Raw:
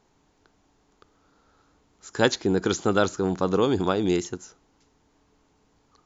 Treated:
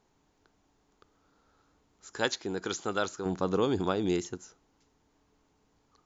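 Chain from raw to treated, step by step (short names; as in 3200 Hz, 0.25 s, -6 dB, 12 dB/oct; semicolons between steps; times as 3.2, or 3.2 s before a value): 2.18–3.26 low shelf 450 Hz -9.5 dB; gain -5.5 dB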